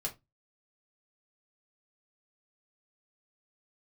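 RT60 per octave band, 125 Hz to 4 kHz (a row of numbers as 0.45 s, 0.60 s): 0.35 s, 0.25 s, 0.20 s, 0.20 s, 0.15 s, 0.15 s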